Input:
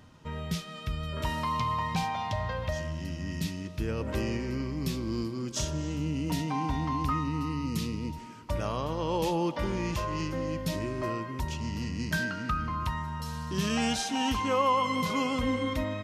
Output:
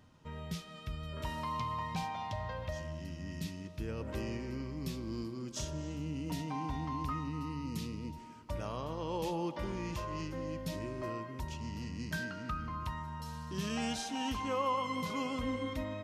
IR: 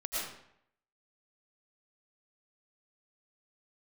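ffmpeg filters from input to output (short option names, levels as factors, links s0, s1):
-filter_complex "[0:a]asplit=2[s0][s1];[s1]lowpass=f=1100:t=q:w=1.7[s2];[1:a]atrim=start_sample=2205[s3];[s2][s3]afir=irnorm=-1:irlink=0,volume=0.0944[s4];[s0][s4]amix=inputs=2:normalize=0,volume=0.398"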